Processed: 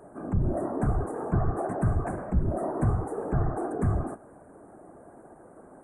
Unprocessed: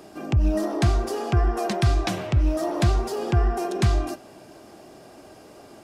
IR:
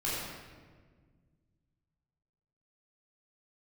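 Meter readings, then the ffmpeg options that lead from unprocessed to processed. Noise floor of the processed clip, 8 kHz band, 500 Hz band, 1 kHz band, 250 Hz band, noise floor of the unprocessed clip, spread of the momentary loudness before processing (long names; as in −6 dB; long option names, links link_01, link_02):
−52 dBFS, below −10 dB, −4.0 dB, −4.5 dB, −3.5 dB, −48 dBFS, 4 LU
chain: -filter_complex "[0:a]afftfilt=real='hypot(re,im)*cos(2*PI*random(0))':imag='hypot(re,im)*sin(2*PI*random(1))':win_size=512:overlap=0.75,equalizer=frequency=4100:width_type=o:width=0.24:gain=9,asplit=2[link_01][link_02];[link_02]asoftclip=type=tanh:threshold=-28.5dB,volume=-4dB[link_03];[link_01][link_03]amix=inputs=2:normalize=0,aresample=22050,aresample=44100,asuperstop=centerf=4000:order=8:qfactor=0.53,volume=-1.5dB"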